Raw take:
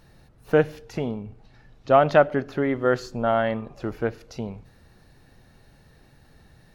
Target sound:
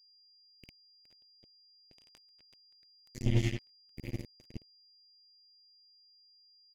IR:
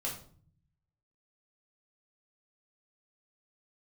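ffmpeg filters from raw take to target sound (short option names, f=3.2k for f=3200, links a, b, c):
-filter_complex "[0:a]asplit=2[a][b];[1:a]atrim=start_sample=2205,adelay=42[c];[b][c]afir=irnorm=-1:irlink=0,volume=-8dB[d];[a][d]amix=inputs=2:normalize=0,afftfilt=real='re*(1-between(b*sr/4096,130,2000))':imag='im*(1-between(b*sr/4096,130,2000))':win_size=4096:overlap=0.75,aecho=1:1:45|52|102|114|385|417:0.282|0.398|0.562|0.562|0.316|0.282,acrossover=split=430|2000[e][f][g];[f]acompressor=threshold=-60dB:ratio=6[h];[e][h][g]amix=inputs=3:normalize=0,firequalizer=gain_entry='entry(170,0);entry(1400,14);entry(2100,-4);entry(4100,-12);entry(6300,-1)':delay=0.05:min_phase=1,acrusher=bits=3:mix=0:aa=0.5,aeval=exprs='val(0)+0.000891*sin(2*PI*4800*n/s)':c=same"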